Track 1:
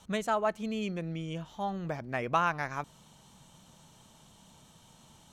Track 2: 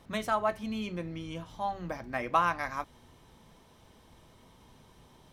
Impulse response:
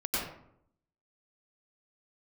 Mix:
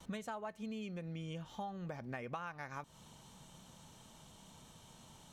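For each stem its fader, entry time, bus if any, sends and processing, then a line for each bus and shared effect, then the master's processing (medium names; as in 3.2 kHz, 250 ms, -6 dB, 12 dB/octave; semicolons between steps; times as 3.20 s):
-1.0 dB, 0.00 s, no send, none
-2.0 dB, 0.00 s, no send, auto duck -9 dB, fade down 0.25 s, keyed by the first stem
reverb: none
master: gate with hold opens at -52 dBFS; compression 10:1, threshold -40 dBFS, peak gain reduction 17.5 dB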